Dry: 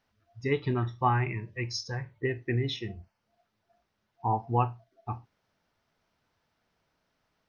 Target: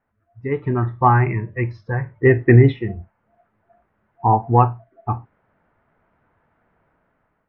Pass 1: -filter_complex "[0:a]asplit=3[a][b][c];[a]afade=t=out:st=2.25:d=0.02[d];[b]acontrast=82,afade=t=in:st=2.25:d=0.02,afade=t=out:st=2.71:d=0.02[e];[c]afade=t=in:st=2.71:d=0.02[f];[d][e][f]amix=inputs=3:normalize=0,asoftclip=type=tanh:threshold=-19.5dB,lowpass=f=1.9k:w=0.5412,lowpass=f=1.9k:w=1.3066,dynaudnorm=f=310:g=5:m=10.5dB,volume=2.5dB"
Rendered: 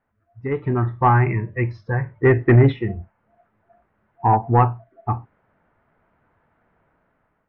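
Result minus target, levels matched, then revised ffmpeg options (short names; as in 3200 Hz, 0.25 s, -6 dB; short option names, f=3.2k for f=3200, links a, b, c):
soft clip: distortion +19 dB
-filter_complex "[0:a]asplit=3[a][b][c];[a]afade=t=out:st=2.25:d=0.02[d];[b]acontrast=82,afade=t=in:st=2.25:d=0.02,afade=t=out:st=2.71:d=0.02[e];[c]afade=t=in:st=2.71:d=0.02[f];[d][e][f]amix=inputs=3:normalize=0,asoftclip=type=tanh:threshold=-7.5dB,lowpass=f=1.9k:w=0.5412,lowpass=f=1.9k:w=1.3066,dynaudnorm=f=310:g=5:m=10.5dB,volume=2.5dB"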